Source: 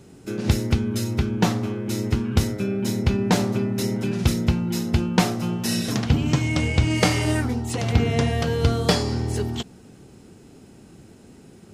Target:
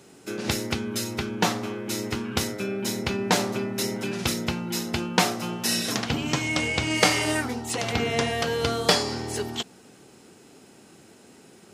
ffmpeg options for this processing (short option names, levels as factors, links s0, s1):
-af "highpass=f=600:p=1,volume=1.41"